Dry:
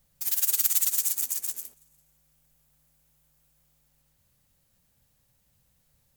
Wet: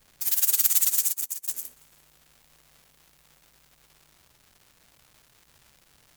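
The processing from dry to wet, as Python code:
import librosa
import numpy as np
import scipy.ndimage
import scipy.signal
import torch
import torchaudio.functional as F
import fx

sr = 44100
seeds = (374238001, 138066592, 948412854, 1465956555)

y = fx.dmg_crackle(x, sr, seeds[0], per_s=470.0, level_db=-47.0)
y = fx.upward_expand(y, sr, threshold_db=-38.0, expansion=2.5, at=(1.07, 1.48))
y = F.gain(torch.from_numpy(y), 2.5).numpy()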